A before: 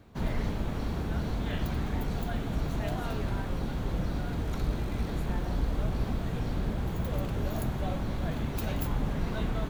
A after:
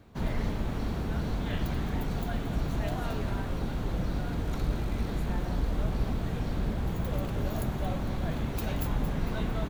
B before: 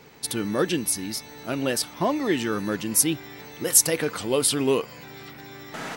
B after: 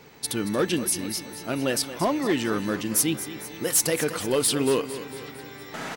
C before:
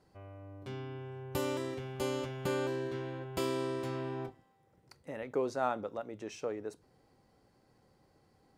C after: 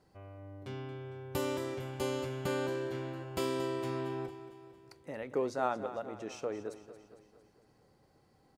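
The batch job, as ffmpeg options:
-filter_complex "[0:a]asoftclip=type=hard:threshold=-16.5dB,asplit=2[a][b];[b]aecho=0:1:227|454|681|908|1135|1362:0.224|0.121|0.0653|0.0353|0.019|0.0103[c];[a][c]amix=inputs=2:normalize=0"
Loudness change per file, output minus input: +0.5, -1.5, 0.0 LU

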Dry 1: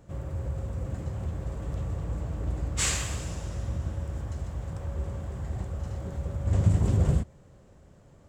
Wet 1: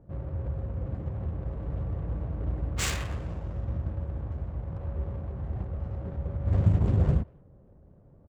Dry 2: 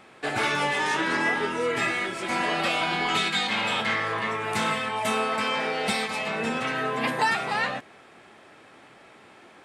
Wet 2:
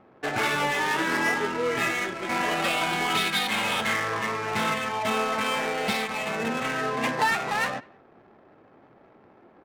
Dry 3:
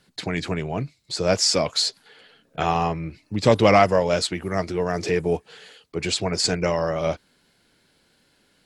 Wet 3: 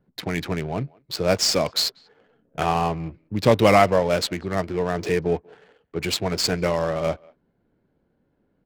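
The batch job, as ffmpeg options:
-filter_complex "[0:a]adynamicsmooth=sensitivity=6.5:basefreq=680,asplit=2[a][b];[b]adelay=190,highpass=300,lowpass=3.4k,asoftclip=type=hard:threshold=-9.5dB,volume=-26dB[c];[a][c]amix=inputs=2:normalize=0"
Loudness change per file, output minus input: -0.5, 0.0, 0.0 LU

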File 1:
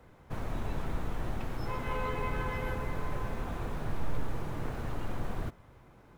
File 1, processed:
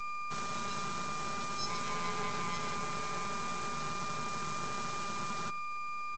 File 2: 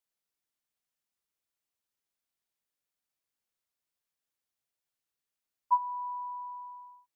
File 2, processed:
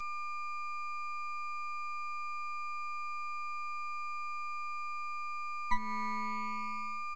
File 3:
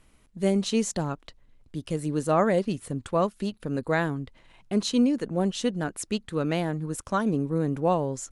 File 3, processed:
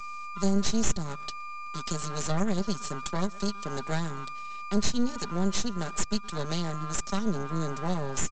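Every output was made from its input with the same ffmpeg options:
-filter_complex "[0:a]aeval=exprs='val(0)+0.0178*sin(2*PI*1200*n/s)':c=same,highpass=f=94:w=0.5412,highpass=f=94:w=1.3066,aecho=1:1:5:0.86,asplit=2[a][b];[b]adelay=118,lowpass=f=1.2k:p=1,volume=-21dB,asplit=2[c][d];[d]adelay=118,lowpass=f=1.2k:p=1,volume=0.32[e];[c][e]amix=inputs=2:normalize=0[f];[a][f]amix=inputs=2:normalize=0,aexciter=amount=5.6:drive=8.4:freq=3.7k,aeval=exprs='1.19*(cos(1*acos(clip(val(0)/1.19,-1,1)))-cos(1*PI/2))+0.422*(cos(2*acos(clip(val(0)/1.19,-1,1)))-cos(2*PI/2))':c=same,aresample=16000,aeval=exprs='max(val(0),0)':c=same,aresample=44100,acrossover=split=250[g][h];[h]acompressor=threshold=-29dB:ratio=5[i];[g][i]amix=inputs=2:normalize=0,volume=-2dB"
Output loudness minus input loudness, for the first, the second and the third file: +0.5, -4.5, -4.5 LU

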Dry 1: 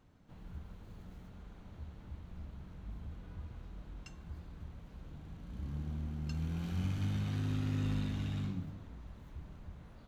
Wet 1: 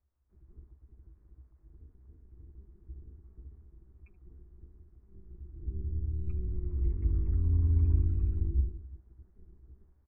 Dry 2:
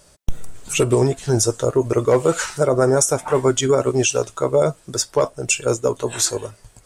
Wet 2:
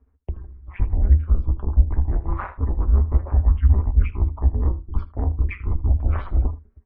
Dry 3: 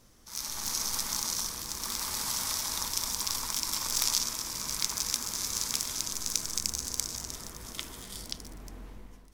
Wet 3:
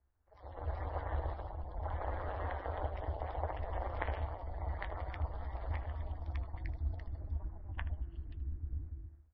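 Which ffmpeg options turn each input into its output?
-filter_complex "[0:a]bandreject=f=60:t=h:w=6,bandreject=f=120:t=h:w=6,bandreject=f=180:t=h:w=6,bandreject=f=240:t=h:w=6,bandreject=f=300:t=h:w=6,bandreject=f=360:t=h:w=6,bandreject=f=420:t=h:w=6,bandreject=f=480:t=h:w=6,afftdn=nr=23:nf=-41,equalizer=f=62:t=o:w=2.8:g=5.5,highpass=f=200:t=q:w=0.5412,highpass=f=200:t=q:w=1.307,lowpass=f=2.2k:t=q:w=0.5176,lowpass=f=2.2k:t=q:w=0.7071,lowpass=f=2.2k:t=q:w=1.932,afreqshift=-340,acontrast=26,alimiter=limit=-8dB:level=0:latency=1:release=251,areverse,acompressor=threshold=-25dB:ratio=16,areverse,tremolo=f=190:d=0.947,lowshelf=f=100:t=q:w=3:g=12.5,asplit=2[a][b];[b]aecho=0:1:15|78:0.158|0.141[c];[a][c]amix=inputs=2:normalize=0,volume=3dB" -ar 24000 -c:a libmp3lame -b:a 24k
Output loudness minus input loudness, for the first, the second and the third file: +9.5, -3.5, -10.5 LU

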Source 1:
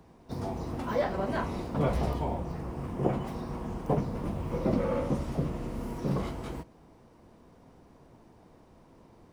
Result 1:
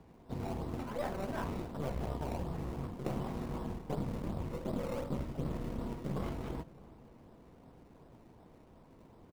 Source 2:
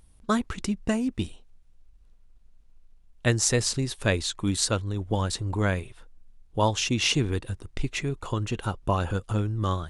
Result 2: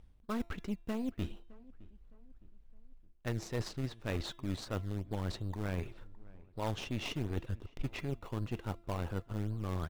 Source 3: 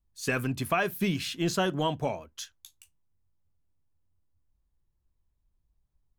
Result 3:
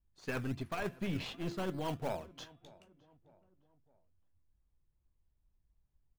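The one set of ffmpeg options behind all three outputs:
-filter_complex "[0:a]lowpass=3.4k,aeval=exprs='0.316*(cos(1*acos(clip(val(0)/0.316,-1,1)))-cos(1*PI/2))+0.0447*(cos(3*acos(clip(val(0)/0.316,-1,1)))-cos(3*PI/2))+0.0141*(cos(8*acos(clip(val(0)/0.316,-1,1)))-cos(8*PI/2))':c=same,areverse,acompressor=threshold=-36dB:ratio=6,areverse,bandreject=f=340.9:t=h:w=4,bandreject=f=681.8:t=h:w=4,bandreject=f=1.0227k:t=h:w=4,bandreject=f=1.3636k:t=h:w=4,bandreject=f=1.7045k:t=h:w=4,bandreject=f=2.0454k:t=h:w=4,bandreject=f=2.3863k:t=h:w=4,bandreject=f=2.7272k:t=h:w=4,bandreject=f=3.0681k:t=h:w=4,bandreject=f=3.409k:t=h:w=4,bandreject=f=3.7499k:t=h:w=4,asplit=2[a][b];[b]acrusher=samples=19:mix=1:aa=0.000001:lfo=1:lforange=19:lforate=2.7,volume=-6.5dB[c];[a][c]amix=inputs=2:normalize=0,asplit=2[d][e];[e]adelay=613,lowpass=f=1.7k:p=1,volume=-21.5dB,asplit=2[f][g];[g]adelay=613,lowpass=f=1.7k:p=1,volume=0.46,asplit=2[h][i];[i]adelay=613,lowpass=f=1.7k:p=1,volume=0.46[j];[d][f][h][j]amix=inputs=4:normalize=0"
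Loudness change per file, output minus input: -7.0, -12.0, -9.5 LU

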